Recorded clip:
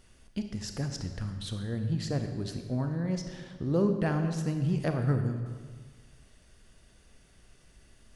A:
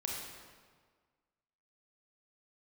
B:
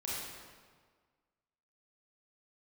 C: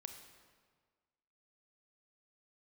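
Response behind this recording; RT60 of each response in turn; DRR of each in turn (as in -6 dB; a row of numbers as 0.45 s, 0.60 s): C; 1.6 s, 1.6 s, 1.6 s; -2.0 dB, -7.0 dB, 6.0 dB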